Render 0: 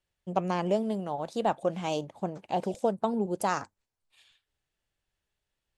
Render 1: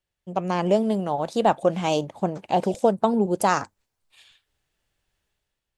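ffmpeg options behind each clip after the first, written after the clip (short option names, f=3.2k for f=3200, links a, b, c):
-af "dynaudnorm=f=110:g=9:m=9dB,volume=-1dB"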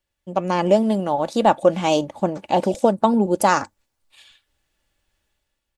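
-af "aecho=1:1:3.5:0.36,volume=3.5dB"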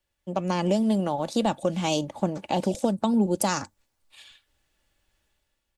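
-filter_complex "[0:a]acrossover=split=230|3000[a][b][c];[b]acompressor=threshold=-26dB:ratio=4[d];[a][d][c]amix=inputs=3:normalize=0"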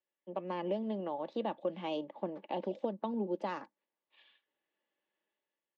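-af "highpass=f=240:w=0.5412,highpass=f=240:w=1.3066,equalizer=f=260:t=q:w=4:g=-6,equalizer=f=730:t=q:w=4:g=-5,equalizer=f=1.4k:t=q:w=4:g=-9,equalizer=f=2.4k:t=q:w=4:g=-6,lowpass=f=2.8k:w=0.5412,lowpass=f=2.8k:w=1.3066,volume=-7.5dB"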